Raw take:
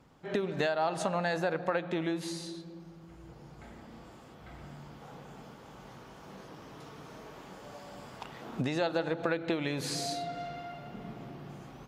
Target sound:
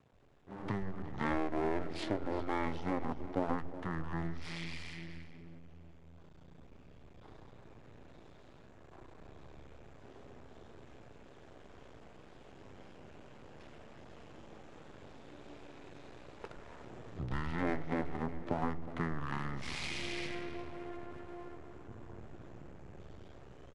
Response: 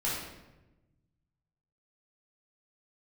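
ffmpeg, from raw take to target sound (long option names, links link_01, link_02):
-filter_complex "[0:a]asplit=2[link_01][link_02];[link_02]aecho=0:1:184:0.158[link_03];[link_01][link_03]amix=inputs=2:normalize=0,aeval=exprs='max(val(0),0)':channel_layout=same,equalizer=frequency=390:width=1.7:gain=-3.5,bandreject=frequency=60:width_type=h:width=6,bandreject=frequency=120:width_type=h:width=6,bandreject=frequency=180:width_type=h:width=6,acrossover=split=150[link_04][link_05];[link_04]adelay=60[link_06];[link_06][link_05]amix=inputs=2:normalize=0,asetrate=22050,aresample=44100"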